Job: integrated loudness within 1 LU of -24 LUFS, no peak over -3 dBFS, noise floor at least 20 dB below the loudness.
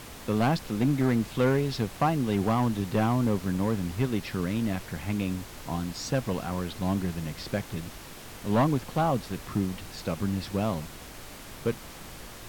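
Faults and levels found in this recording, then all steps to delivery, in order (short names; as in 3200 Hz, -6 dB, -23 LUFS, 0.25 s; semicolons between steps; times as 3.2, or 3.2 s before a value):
clipped 0.8%; flat tops at -17.5 dBFS; noise floor -44 dBFS; noise floor target -49 dBFS; loudness -29.0 LUFS; peak -17.5 dBFS; loudness target -24.0 LUFS
-> clip repair -17.5 dBFS; noise print and reduce 6 dB; gain +5 dB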